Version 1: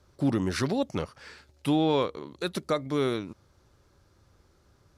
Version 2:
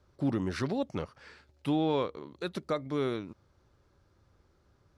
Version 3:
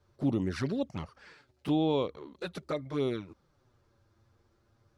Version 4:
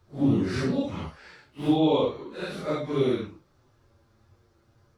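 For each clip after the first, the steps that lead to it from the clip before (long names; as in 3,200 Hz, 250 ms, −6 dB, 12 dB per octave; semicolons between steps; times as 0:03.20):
low-pass filter 3,600 Hz 6 dB per octave; level −4 dB
flanger swept by the level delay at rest 9.2 ms, full sweep at −25.5 dBFS; level +1.5 dB
random phases in long frames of 200 ms; level +6 dB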